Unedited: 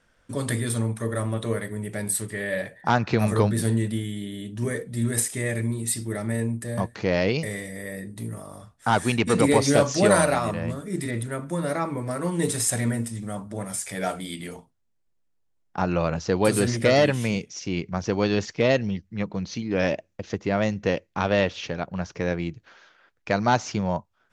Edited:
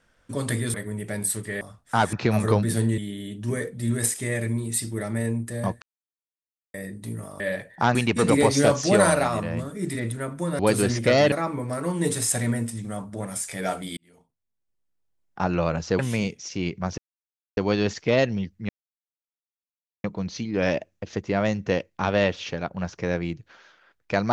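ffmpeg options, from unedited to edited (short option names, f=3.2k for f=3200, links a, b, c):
-filter_complex "[0:a]asplit=15[a][b][c][d][e][f][g][h][i][j][k][l][m][n][o];[a]atrim=end=0.742[p];[b]atrim=start=1.588:end=2.462[q];[c]atrim=start=8.538:end=9.062[r];[d]atrim=start=3.008:end=3.862[s];[e]atrim=start=4.118:end=6.96,asetpts=PTS-STARTPTS,afade=t=out:st=2.838:d=0.004:c=hsin[t];[f]atrim=start=6.96:end=7.88,asetpts=PTS-STARTPTS,volume=0[u];[g]atrim=start=7.88:end=8.542,asetpts=PTS-STARTPTS,afade=t=in:d=0.004:c=hsin[v];[h]atrim=start=2.458:end=3.012[w];[i]atrim=start=9.058:end=11.702[x];[j]atrim=start=16.368:end=17.102[y];[k]atrim=start=11.698:end=14.35,asetpts=PTS-STARTPTS,afade=t=out:st=2.648:d=0.004:c=hsin[z];[l]atrim=start=14.35:end=16.372,asetpts=PTS-STARTPTS,afade=t=in:d=1.46[aa];[m]atrim=start=17.098:end=18.09,asetpts=PTS-STARTPTS,afade=t=out:st=0.988:d=0.004:c=hsin,apad=pad_dur=0.59[ab];[n]atrim=start=18.09:end=19.21,asetpts=PTS-STARTPTS,afade=t=in:d=0.004:c=hsin,afade=t=out:st=1.116:d=0.004:c=hsin,apad=pad_dur=1.35[ac];[o]atrim=start=19.21,asetpts=PTS-STARTPTS,afade=t=in:d=0.004:c=hsin[ad];[p][q]acrossfade=d=0.004:c1=hsin:c2=hsin[ae];[ae][r]acrossfade=d=0.004:c1=hsin:c2=hsin[af];[af][s]acrossfade=d=0.004:c1=hsin:c2=hsin[ag];[t][u][v]concat=n=3:v=0:a=1[ah];[ag][ah]acrossfade=d=0.004:c1=hsin:c2=hsin[ai];[ai][w]acrossfade=d=0.004:c1=hsin:c2=hsin[aj];[aj][x]acrossfade=d=0.004:c1=hsin:c2=hsin[ak];[ak][y]acrossfade=d=0.004:c1=hsin:c2=hsin[al];[z][aa]concat=n=2:v=0:a=1[am];[al][am]acrossfade=d=0.004:c1=hsin:c2=hsin[an];[ab][ac][ad]concat=n=3:v=0:a=1[ao];[an][ao]acrossfade=d=0.004:c1=hsin:c2=hsin"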